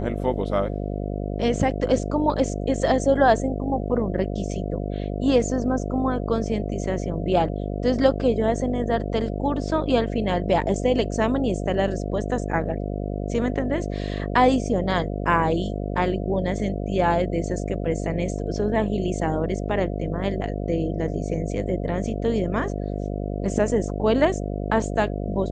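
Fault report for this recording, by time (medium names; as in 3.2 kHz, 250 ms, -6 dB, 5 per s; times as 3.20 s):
buzz 50 Hz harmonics 14 -28 dBFS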